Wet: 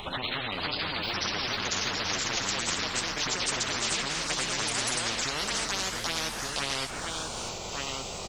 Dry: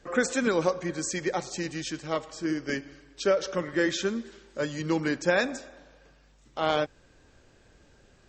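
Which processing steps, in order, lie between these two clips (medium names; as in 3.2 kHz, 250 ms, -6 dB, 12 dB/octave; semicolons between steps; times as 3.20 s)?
pitch bend over the whole clip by -12 st ending unshifted; touch-sensitive phaser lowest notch 270 Hz, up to 1.7 kHz, full sweep at -22.5 dBFS; in parallel at +3 dB: peak limiter -21.5 dBFS, peak gain reduction 7.5 dB; on the sum: compression 4:1, threshold -27 dBFS, peak gain reduction 10 dB; on a send: delay 1169 ms -20.5 dB; on the sum: ever faster or slower copies 525 ms, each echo +3 st, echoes 3; spectrum-flattening compressor 10:1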